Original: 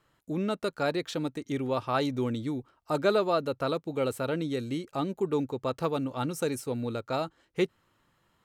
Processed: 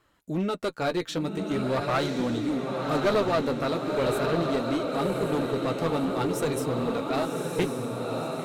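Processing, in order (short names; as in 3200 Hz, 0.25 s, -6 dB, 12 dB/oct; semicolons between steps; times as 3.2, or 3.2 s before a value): diffused feedback echo 1.076 s, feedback 53%, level -3.5 dB; flange 0.42 Hz, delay 2.6 ms, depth 10 ms, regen -32%; one-sided clip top -30.5 dBFS; gain +6.5 dB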